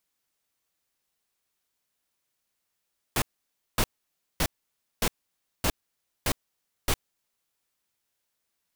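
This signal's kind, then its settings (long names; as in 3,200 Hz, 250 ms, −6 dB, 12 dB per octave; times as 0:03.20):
noise bursts pink, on 0.06 s, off 0.56 s, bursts 7, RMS −24 dBFS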